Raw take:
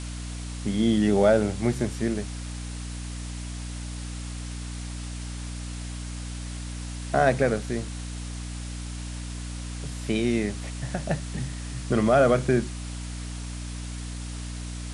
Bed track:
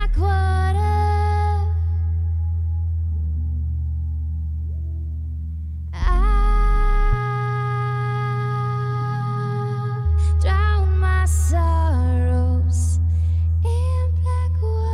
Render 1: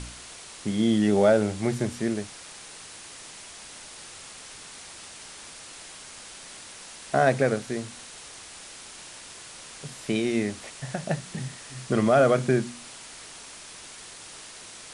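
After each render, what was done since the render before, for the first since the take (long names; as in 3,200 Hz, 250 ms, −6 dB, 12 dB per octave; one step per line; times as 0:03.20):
hum removal 60 Hz, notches 5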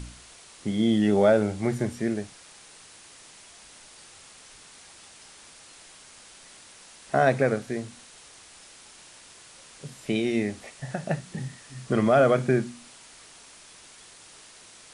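noise reduction from a noise print 6 dB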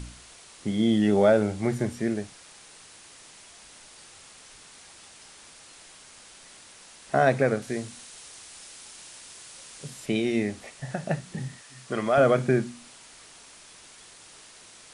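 0:07.62–0:10.06: high-shelf EQ 3,600 Hz +6 dB
0:11.61–0:12.18: low-shelf EQ 340 Hz −12 dB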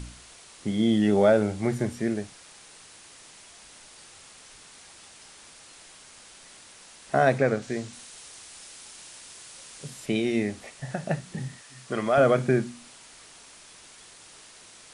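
0:07.38–0:07.93: low-pass filter 8,200 Hz 24 dB per octave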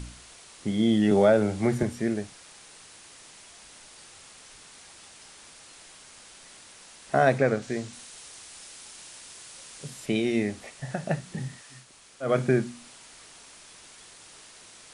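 0:01.11–0:01.83: multiband upward and downward compressor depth 40%
0:11.84–0:12.28: fill with room tone, crossfade 0.16 s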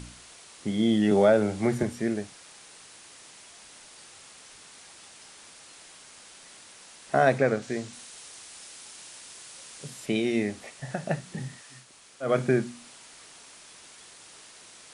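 low-shelf EQ 70 Hz −10 dB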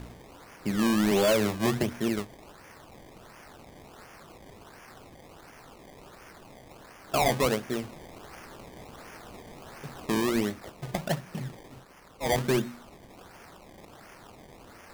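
sample-and-hold swept by an LFO 22×, swing 100% 1.4 Hz
gain into a clipping stage and back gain 19.5 dB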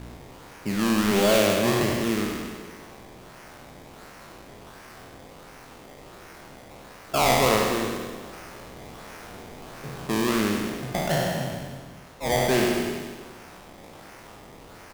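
peak hold with a decay on every bin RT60 1.61 s
repeating echo 96 ms, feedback 56%, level −8 dB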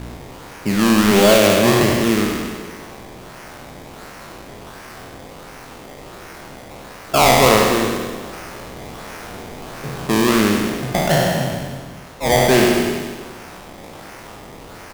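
level +8.5 dB
brickwall limiter −2 dBFS, peak gain reduction 2.5 dB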